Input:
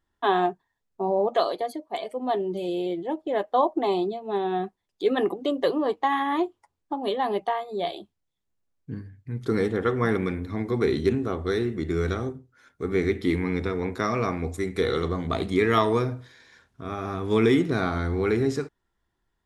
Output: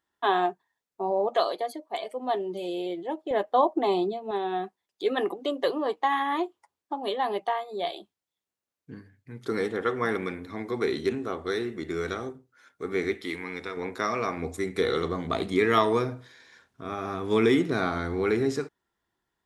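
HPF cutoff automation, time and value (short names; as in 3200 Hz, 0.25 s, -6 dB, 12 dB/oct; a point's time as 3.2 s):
HPF 6 dB/oct
430 Hz
from 3.31 s 130 Hz
from 4.31 s 460 Hz
from 13.15 s 1100 Hz
from 13.77 s 470 Hz
from 14.37 s 210 Hz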